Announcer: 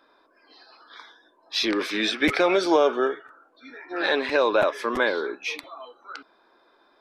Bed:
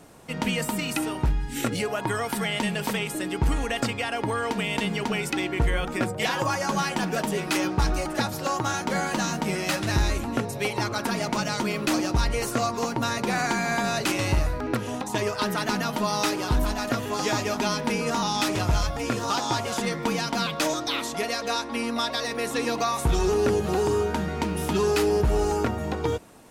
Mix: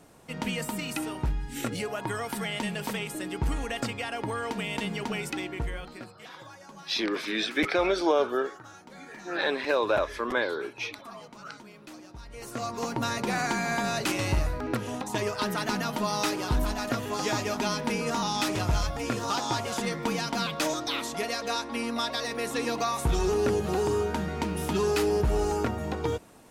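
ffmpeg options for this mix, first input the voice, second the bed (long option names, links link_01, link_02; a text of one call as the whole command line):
ffmpeg -i stem1.wav -i stem2.wav -filter_complex "[0:a]adelay=5350,volume=-4.5dB[link_01];[1:a]volume=14dB,afade=type=out:start_time=5.24:duration=0.89:silence=0.141254,afade=type=in:start_time=12.28:duration=0.69:silence=0.112202[link_02];[link_01][link_02]amix=inputs=2:normalize=0" out.wav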